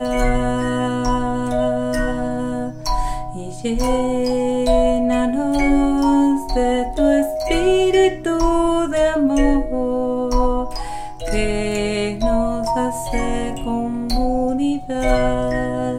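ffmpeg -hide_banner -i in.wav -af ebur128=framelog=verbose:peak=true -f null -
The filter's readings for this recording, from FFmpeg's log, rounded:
Integrated loudness:
  I:         -19.3 LUFS
  Threshold: -29.4 LUFS
Loudness range:
  LRA:         4.7 LU
  Threshold: -39.2 LUFS
  LRA low:   -21.8 LUFS
  LRA high:  -17.1 LUFS
True peak:
  Peak:       -3.1 dBFS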